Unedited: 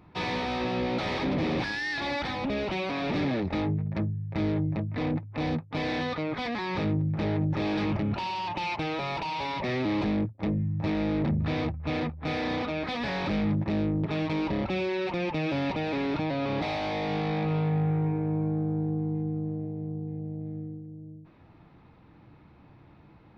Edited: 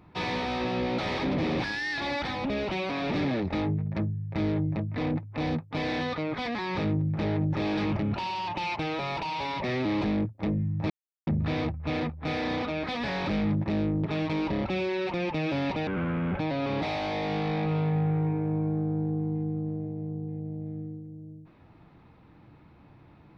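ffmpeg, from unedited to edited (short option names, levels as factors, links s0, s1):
-filter_complex "[0:a]asplit=5[s0][s1][s2][s3][s4];[s0]atrim=end=10.9,asetpts=PTS-STARTPTS,afade=t=out:st=10.896:d=0.004:c=hsin[s5];[s1]atrim=start=10.9:end=11.27,asetpts=PTS-STARTPTS,volume=0[s6];[s2]atrim=start=11.27:end=15.874,asetpts=PTS-STARTPTS,afade=t=in:d=0.004:c=hsin[s7];[s3]atrim=start=15.87:end=16.19,asetpts=PTS-STARTPTS,asetrate=26901,aresample=44100,atrim=end_sample=23134,asetpts=PTS-STARTPTS[s8];[s4]atrim=start=16.186[s9];[s5][s6][s7]concat=n=3:v=0:a=1[s10];[s10][s8]acrossfade=d=0.004:c1=hsin:c2=hsin[s11];[s11][s9]acrossfade=d=0.004:c1=hsin:c2=hsin"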